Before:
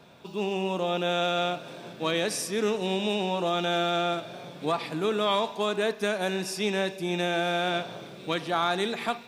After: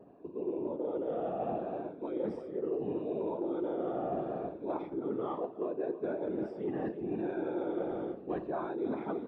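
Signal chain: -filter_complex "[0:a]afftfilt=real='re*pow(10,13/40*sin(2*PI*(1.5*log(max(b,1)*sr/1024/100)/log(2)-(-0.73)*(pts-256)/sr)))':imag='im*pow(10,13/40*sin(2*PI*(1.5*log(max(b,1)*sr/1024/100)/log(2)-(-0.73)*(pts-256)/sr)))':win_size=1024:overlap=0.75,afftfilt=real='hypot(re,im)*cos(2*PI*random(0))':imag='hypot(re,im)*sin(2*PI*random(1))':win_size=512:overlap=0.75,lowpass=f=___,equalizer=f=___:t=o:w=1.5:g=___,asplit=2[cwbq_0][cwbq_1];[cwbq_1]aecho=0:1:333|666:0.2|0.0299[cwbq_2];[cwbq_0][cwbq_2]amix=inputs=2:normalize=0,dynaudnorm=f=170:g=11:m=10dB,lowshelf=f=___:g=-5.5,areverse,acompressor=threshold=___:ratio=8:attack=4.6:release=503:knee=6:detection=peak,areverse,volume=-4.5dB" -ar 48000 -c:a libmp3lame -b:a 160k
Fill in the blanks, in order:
1k, 340, 14.5, 180, -25dB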